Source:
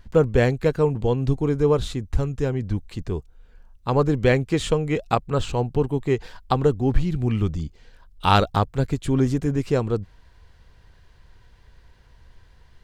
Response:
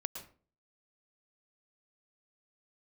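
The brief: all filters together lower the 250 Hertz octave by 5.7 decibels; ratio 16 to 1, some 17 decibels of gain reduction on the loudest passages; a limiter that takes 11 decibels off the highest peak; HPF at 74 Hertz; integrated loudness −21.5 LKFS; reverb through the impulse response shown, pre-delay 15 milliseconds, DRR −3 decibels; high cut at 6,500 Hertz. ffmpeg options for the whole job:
-filter_complex "[0:a]highpass=74,lowpass=6500,equalizer=frequency=250:width_type=o:gain=-8,acompressor=threshold=-31dB:ratio=16,alimiter=level_in=3.5dB:limit=-24dB:level=0:latency=1,volume=-3.5dB,asplit=2[link_01][link_02];[1:a]atrim=start_sample=2205,adelay=15[link_03];[link_02][link_03]afir=irnorm=-1:irlink=0,volume=3.5dB[link_04];[link_01][link_04]amix=inputs=2:normalize=0,volume=12dB"

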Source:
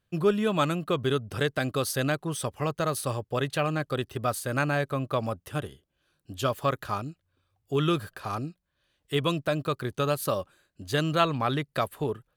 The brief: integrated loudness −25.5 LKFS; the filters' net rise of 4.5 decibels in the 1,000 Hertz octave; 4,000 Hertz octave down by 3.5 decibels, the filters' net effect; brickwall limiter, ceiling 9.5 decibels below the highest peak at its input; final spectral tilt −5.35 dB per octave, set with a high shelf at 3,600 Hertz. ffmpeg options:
ffmpeg -i in.wav -af "equalizer=frequency=1000:width_type=o:gain=6,highshelf=frequency=3600:gain=3.5,equalizer=frequency=4000:width_type=o:gain=-7,volume=3.5dB,alimiter=limit=-13dB:level=0:latency=1" out.wav

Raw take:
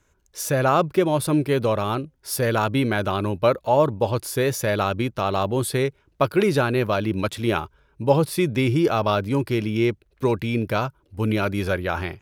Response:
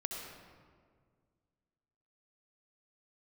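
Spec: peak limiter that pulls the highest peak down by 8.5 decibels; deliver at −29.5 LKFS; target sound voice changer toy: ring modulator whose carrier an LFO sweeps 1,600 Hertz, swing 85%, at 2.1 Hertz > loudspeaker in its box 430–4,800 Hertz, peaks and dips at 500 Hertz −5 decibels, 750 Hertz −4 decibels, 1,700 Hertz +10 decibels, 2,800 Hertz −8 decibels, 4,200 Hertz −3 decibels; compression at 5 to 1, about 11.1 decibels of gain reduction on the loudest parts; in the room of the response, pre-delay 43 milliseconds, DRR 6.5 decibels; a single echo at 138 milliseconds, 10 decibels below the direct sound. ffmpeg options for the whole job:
-filter_complex "[0:a]acompressor=threshold=-25dB:ratio=5,alimiter=limit=-21.5dB:level=0:latency=1,aecho=1:1:138:0.316,asplit=2[link_01][link_02];[1:a]atrim=start_sample=2205,adelay=43[link_03];[link_02][link_03]afir=irnorm=-1:irlink=0,volume=-7.5dB[link_04];[link_01][link_04]amix=inputs=2:normalize=0,aeval=exprs='val(0)*sin(2*PI*1600*n/s+1600*0.85/2.1*sin(2*PI*2.1*n/s))':channel_layout=same,highpass=430,equalizer=frequency=500:width_type=q:width=4:gain=-5,equalizer=frequency=750:width_type=q:width=4:gain=-4,equalizer=frequency=1700:width_type=q:width=4:gain=10,equalizer=frequency=2800:width_type=q:width=4:gain=-8,equalizer=frequency=4200:width_type=q:width=4:gain=-3,lowpass=frequency=4800:width=0.5412,lowpass=frequency=4800:width=1.3066,volume=1dB"

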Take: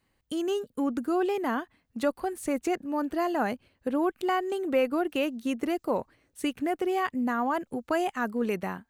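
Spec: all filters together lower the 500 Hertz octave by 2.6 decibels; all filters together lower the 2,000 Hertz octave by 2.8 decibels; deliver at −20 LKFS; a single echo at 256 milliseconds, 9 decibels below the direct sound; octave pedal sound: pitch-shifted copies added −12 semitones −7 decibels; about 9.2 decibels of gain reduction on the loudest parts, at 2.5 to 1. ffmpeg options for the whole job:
ffmpeg -i in.wav -filter_complex "[0:a]equalizer=frequency=500:width_type=o:gain=-3.5,equalizer=frequency=2000:width_type=o:gain=-3.5,acompressor=threshold=-38dB:ratio=2.5,aecho=1:1:256:0.355,asplit=2[link_01][link_02];[link_02]asetrate=22050,aresample=44100,atempo=2,volume=-7dB[link_03];[link_01][link_03]amix=inputs=2:normalize=0,volume=18dB" out.wav

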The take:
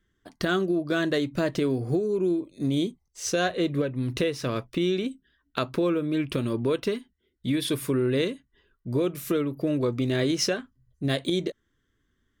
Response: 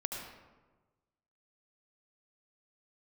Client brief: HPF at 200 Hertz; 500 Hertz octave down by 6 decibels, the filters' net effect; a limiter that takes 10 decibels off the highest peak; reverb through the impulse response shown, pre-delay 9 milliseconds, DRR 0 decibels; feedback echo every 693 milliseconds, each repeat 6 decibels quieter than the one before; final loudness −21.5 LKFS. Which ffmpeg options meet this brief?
-filter_complex "[0:a]highpass=200,equalizer=frequency=500:width_type=o:gain=-8,alimiter=limit=-19.5dB:level=0:latency=1,aecho=1:1:693|1386|2079|2772|3465|4158:0.501|0.251|0.125|0.0626|0.0313|0.0157,asplit=2[link_01][link_02];[1:a]atrim=start_sample=2205,adelay=9[link_03];[link_02][link_03]afir=irnorm=-1:irlink=0,volume=-2dB[link_04];[link_01][link_04]amix=inputs=2:normalize=0,volume=7dB"

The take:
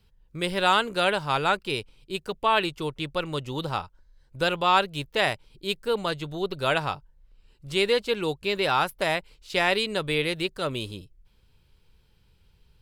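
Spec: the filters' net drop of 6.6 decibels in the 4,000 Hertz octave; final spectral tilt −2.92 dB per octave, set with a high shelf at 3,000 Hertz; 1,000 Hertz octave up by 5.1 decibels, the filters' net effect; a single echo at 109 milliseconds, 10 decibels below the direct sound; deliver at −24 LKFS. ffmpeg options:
ffmpeg -i in.wav -af "equalizer=frequency=1000:width_type=o:gain=7.5,highshelf=frequency=3000:gain=-7,equalizer=frequency=4000:width_type=o:gain=-4,aecho=1:1:109:0.316" out.wav

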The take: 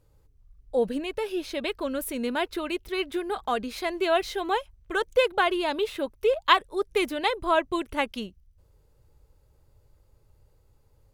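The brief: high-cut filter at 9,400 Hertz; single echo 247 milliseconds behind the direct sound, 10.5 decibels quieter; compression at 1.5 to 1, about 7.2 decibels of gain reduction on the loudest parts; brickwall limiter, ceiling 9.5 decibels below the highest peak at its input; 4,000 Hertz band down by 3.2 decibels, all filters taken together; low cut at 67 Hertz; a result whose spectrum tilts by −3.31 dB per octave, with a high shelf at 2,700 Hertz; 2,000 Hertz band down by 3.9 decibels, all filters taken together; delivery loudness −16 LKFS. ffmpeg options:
ffmpeg -i in.wav -af "highpass=67,lowpass=9400,equalizer=frequency=2000:width_type=o:gain=-6.5,highshelf=frequency=2700:gain=7.5,equalizer=frequency=4000:width_type=o:gain=-7.5,acompressor=threshold=-36dB:ratio=1.5,alimiter=limit=-23.5dB:level=0:latency=1,aecho=1:1:247:0.299,volume=18dB" out.wav

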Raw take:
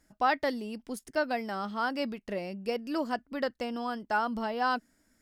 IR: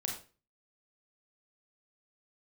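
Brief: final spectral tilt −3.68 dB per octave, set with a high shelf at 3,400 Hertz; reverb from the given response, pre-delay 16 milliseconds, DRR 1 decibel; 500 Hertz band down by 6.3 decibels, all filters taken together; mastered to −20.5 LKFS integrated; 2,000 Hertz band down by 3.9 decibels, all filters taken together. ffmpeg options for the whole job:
-filter_complex "[0:a]equalizer=frequency=500:width_type=o:gain=-7.5,equalizer=frequency=2000:width_type=o:gain=-7.5,highshelf=frequency=3400:gain=8.5,asplit=2[link_01][link_02];[1:a]atrim=start_sample=2205,adelay=16[link_03];[link_02][link_03]afir=irnorm=-1:irlink=0,volume=-2.5dB[link_04];[link_01][link_04]amix=inputs=2:normalize=0,volume=12dB"

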